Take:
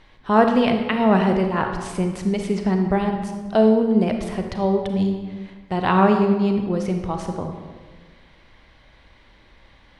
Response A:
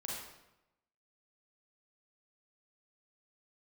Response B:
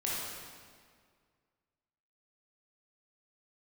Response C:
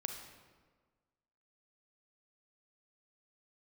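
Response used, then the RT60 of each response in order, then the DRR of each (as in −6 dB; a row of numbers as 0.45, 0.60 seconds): C; 0.90, 1.9, 1.5 seconds; −4.5, −7.0, 4.5 decibels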